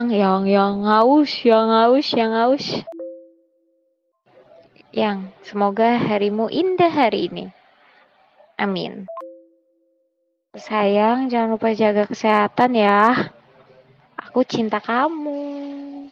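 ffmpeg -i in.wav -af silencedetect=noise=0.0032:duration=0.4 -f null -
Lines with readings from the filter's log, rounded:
silence_start: 3.39
silence_end: 4.27 | silence_duration: 0.88
silence_start: 9.53
silence_end: 10.54 | silence_duration: 1.01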